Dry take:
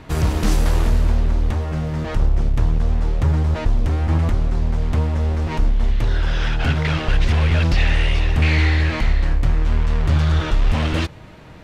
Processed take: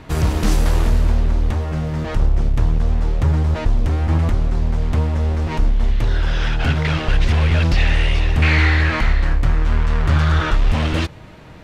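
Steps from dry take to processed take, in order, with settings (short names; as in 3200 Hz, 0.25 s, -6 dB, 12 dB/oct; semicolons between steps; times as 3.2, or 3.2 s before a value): 8.42–10.57 dynamic EQ 1400 Hz, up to +7 dB, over -39 dBFS, Q 1.2; gain +1 dB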